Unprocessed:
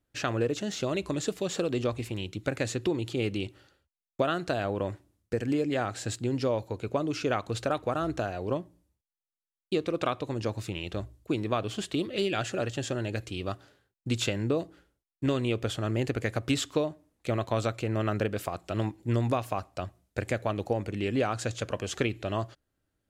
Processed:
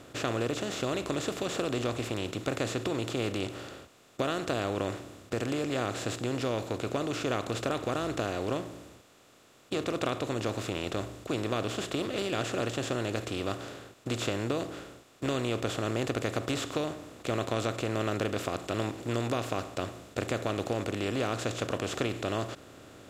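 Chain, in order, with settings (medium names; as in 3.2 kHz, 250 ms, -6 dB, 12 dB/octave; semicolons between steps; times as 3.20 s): spectral levelling over time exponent 0.4; trim -8.5 dB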